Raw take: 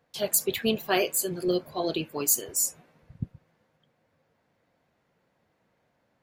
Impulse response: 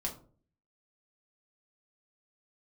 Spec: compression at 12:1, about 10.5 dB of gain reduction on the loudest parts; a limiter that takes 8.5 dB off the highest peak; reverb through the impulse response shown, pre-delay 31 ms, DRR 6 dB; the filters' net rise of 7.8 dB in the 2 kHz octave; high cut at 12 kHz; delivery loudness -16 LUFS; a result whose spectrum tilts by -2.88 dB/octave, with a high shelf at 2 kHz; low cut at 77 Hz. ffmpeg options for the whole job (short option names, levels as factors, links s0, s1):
-filter_complex "[0:a]highpass=77,lowpass=12000,highshelf=f=2000:g=9,equalizer=f=2000:t=o:g=4,acompressor=threshold=0.0794:ratio=12,alimiter=limit=0.133:level=0:latency=1,asplit=2[s0][s1];[1:a]atrim=start_sample=2205,adelay=31[s2];[s1][s2]afir=irnorm=-1:irlink=0,volume=0.422[s3];[s0][s3]amix=inputs=2:normalize=0,volume=4.22"